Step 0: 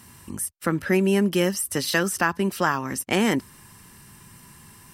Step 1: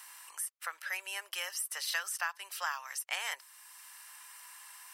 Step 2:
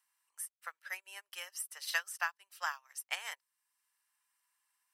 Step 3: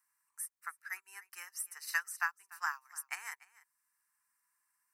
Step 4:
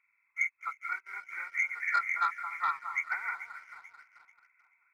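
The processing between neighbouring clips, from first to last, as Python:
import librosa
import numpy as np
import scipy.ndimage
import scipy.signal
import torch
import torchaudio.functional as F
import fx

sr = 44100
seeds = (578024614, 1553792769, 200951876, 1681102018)

y1 = scipy.signal.sosfilt(scipy.signal.bessel(8, 1200.0, 'highpass', norm='mag', fs=sr, output='sos'), x)
y1 = fx.band_squash(y1, sr, depth_pct=40)
y1 = y1 * librosa.db_to_amplitude(-7.5)
y2 = fx.dmg_crackle(y1, sr, seeds[0], per_s=300.0, level_db=-64.0)
y2 = fx.dmg_noise_colour(y2, sr, seeds[1], colour='blue', level_db=-78.0)
y2 = fx.upward_expand(y2, sr, threshold_db=-52.0, expansion=2.5)
y2 = y2 * librosa.db_to_amplitude(2.5)
y3 = fx.fixed_phaser(y2, sr, hz=1400.0, stages=4)
y3 = y3 + 10.0 ** (-20.5 / 20.0) * np.pad(y3, (int(293 * sr / 1000.0), 0))[:len(y3)]
y3 = y3 * librosa.db_to_amplitude(2.0)
y4 = fx.freq_compress(y3, sr, knee_hz=1300.0, ratio=4.0)
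y4 = fx.echo_alternate(y4, sr, ms=219, hz=1400.0, feedback_pct=65, wet_db=-10.0)
y4 = fx.leveller(y4, sr, passes=1)
y4 = y4 * librosa.db_to_amplitude(2.0)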